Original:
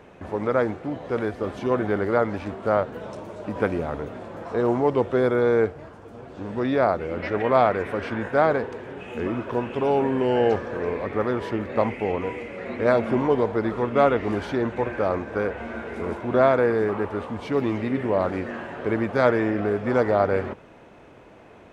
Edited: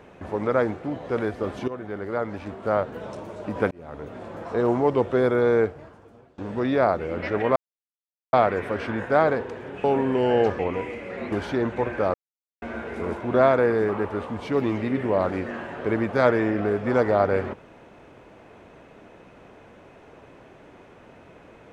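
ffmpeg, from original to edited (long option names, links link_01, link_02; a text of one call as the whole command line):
ffmpeg -i in.wav -filter_complex "[0:a]asplit=10[link_01][link_02][link_03][link_04][link_05][link_06][link_07][link_08][link_09][link_10];[link_01]atrim=end=1.68,asetpts=PTS-STARTPTS,afade=type=out:start_time=1.676:duration=0.004:curve=hsin:silence=0.211349[link_11];[link_02]atrim=start=1.68:end=3.71,asetpts=PTS-STARTPTS,afade=type=in:duration=1.36:silence=0.211349,afade=type=out:start_time=2.026:duration=0.004:curve=hsin[link_12];[link_03]atrim=start=3.71:end=6.38,asetpts=PTS-STARTPTS,afade=type=in:duration=0.56,afade=type=out:start_time=1.86:duration=0.81:silence=0.0891251[link_13];[link_04]atrim=start=6.38:end=7.56,asetpts=PTS-STARTPTS,afade=type=in:duration=0.004:curve=hsin:silence=0.0891251,afade=type=out:start_time=1.176:duration=0.004:curve=hsin,apad=pad_dur=0.77[link_14];[link_05]atrim=start=7.56:end=9.072,asetpts=PTS-STARTPTS,afade=type=in:duration=0.004:curve=hsin[link_15];[link_06]atrim=start=9.898:end=10.652[link_16];[link_07]atrim=start=12.068:end=12.802[link_17];[link_08]atrim=start=14.318:end=15.14,asetpts=PTS-STARTPTS,afade=type=out:start_time=0.818:duration=0.004:curve=hsin[link_18];[link_09]atrim=start=15.14:end=15.62,asetpts=PTS-STARTPTS,volume=0[link_19];[link_10]atrim=start=15.62,asetpts=PTS-STARTPTS,afade=type=in:duration=0.004:curve=hsin[link_20];[link_11][link_12][link_13][link_14][link_15]concat=n=5:v=0:a=1[link_21];[link_21][link_16]acrossfade=duration=0.004:curve1=hsin:curve2=hsin[link_22];[link_22][link_17]acrossfade=duration=0.004:curve1=hsin:curve2=hsin[link_23];[link_18][link_19][link_20]concat=n=3:v=0:a=1[link_24];[link_23][link_24]acrossfade=duration=0.004:curve1=hsin:curve2=hsin" out.wav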